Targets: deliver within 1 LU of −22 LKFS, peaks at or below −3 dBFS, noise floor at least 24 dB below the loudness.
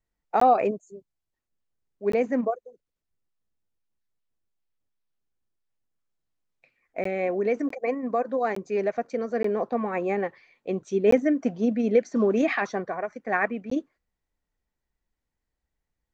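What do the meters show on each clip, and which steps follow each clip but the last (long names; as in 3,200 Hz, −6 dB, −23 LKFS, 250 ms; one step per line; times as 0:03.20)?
number of dropouts 8; longest dropout 14 ms; integrated loudness −26.0 LKFS; sample peak −9.0 dBFS; target loudness −22.0 LKFS
→ repair the gap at 0:00.40/0:02.12/0:07.04/0:07.69/0:08.55/0:09.43/0:11.11/0:13.70, 14 ms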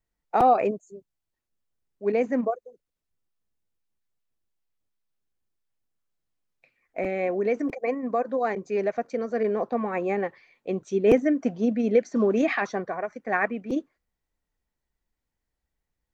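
number of dropouts 0; integrated loudness −26.0 LKFS; sample peak −8.0 dBFS; target loudness −22.0 LKFS
→ level +4 dB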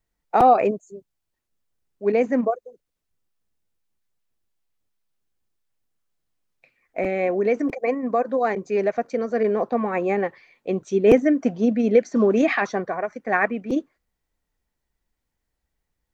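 integrated loudness −22.0 LKFS; sample peak −4.0 dBFS; background noise floor −80 dBFS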